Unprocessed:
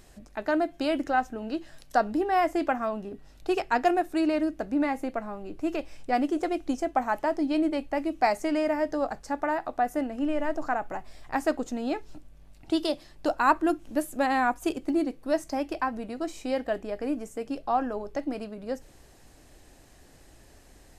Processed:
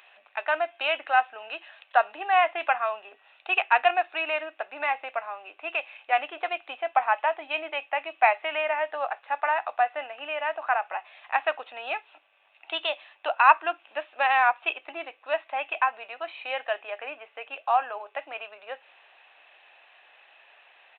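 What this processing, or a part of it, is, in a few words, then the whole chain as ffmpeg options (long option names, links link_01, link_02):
musical greeting card: -af "aresample=8000,aresample=44100,highpass=frequency=730:width=0.5412,highpass=frequency=730:width=1.3066,equalizer=frequency=2600:width_type=o:width=0.26:gain=11,volume=5.5dB"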